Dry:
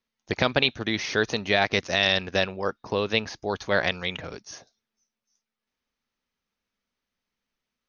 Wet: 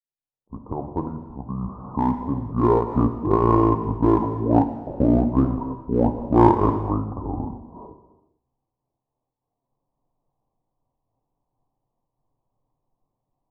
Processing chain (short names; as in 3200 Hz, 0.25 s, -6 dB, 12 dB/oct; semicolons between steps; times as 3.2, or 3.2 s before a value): opening faded in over 2.23 s; steep low-pass 1800 Hz 72 dB/oct; low shelf 75 Hz +7.5 dB; notches 60/120 Hz; in parallel at -5 dB: one-sided clip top -26.5 dBFS, bottom -13 dBFS; on the sum: wide varispeed 0.584×; non-linear reverb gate 0.47 s falling, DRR 6 dB; noise-modulated level, depth 60%; gain +6.5 dB